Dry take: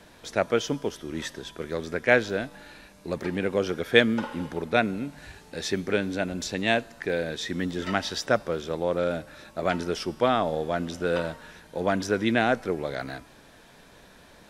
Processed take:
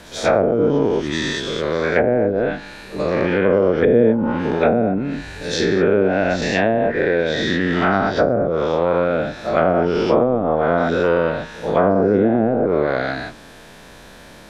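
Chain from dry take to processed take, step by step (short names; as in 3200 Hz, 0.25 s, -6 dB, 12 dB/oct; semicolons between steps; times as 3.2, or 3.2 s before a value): spectral dilation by 0.24 s; treble ducked by the level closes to 430 Hz, closed at -13 dBFS; pre-echo 91 ms -17 dB; gain +5 dB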